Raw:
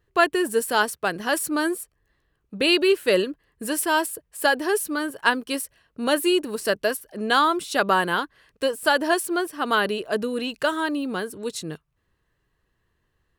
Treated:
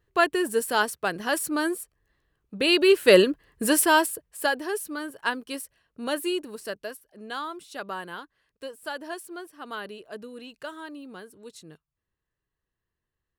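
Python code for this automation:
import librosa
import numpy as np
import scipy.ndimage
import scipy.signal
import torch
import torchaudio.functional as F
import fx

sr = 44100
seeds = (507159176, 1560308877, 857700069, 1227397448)

y = fx.gain(x, sr, db=fx.line((2.66, -2.5), (3.15, 5.0), (3.72, 5.0), (4.67, -7.0), (6.28, -7.0), (7.04, -14.5)))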